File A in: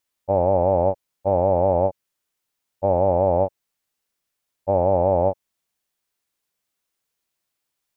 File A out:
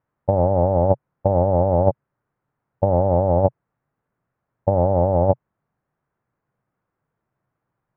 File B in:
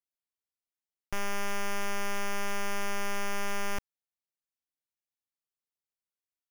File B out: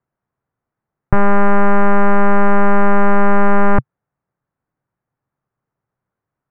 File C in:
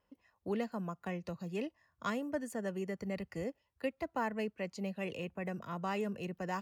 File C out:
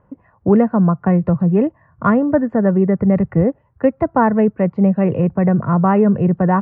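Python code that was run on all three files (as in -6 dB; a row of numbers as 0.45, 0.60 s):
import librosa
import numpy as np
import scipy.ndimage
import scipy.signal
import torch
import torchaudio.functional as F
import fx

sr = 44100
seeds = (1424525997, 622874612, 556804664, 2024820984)

y = scipy.signal.sosfilt(scipy.signal.butter(4, 1500.0, 'lowpass', fs=sr, output='sos'), x)
y = fx.peak_eq(y, sr, hz=130.0, db=13.0, octaves=0.98)
y = fx.over_compress(y, sr, threshold_db=-20.0, ratio=-0.5)
y = librosa.util.normalize(y) * 10.0 ** (-1.5 / 20.0)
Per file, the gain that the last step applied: +5.0, +21.0, +20.5 dB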